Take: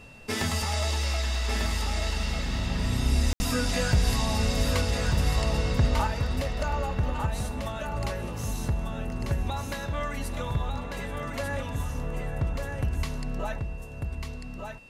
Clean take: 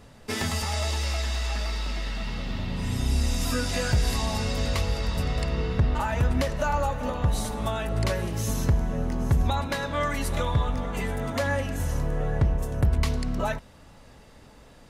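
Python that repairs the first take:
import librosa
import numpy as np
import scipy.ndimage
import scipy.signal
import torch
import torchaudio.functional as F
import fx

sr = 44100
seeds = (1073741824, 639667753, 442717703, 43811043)

y = fx.notch(x, sr, hz=2700.0, q=30.0)
y = fx.fix_ambience(y, sr, seeds[0], print_start_s=14.38, print_end_s=14.88, start_s=3.33, end_s=3.4)
y = fx.fix_echo_inverse(y, sr, delay_ms=1195, level_db=-5.0)
y = fx.gain(y, sr, db=fx.steps((0.0, 0.0), (6.07, 6.0)))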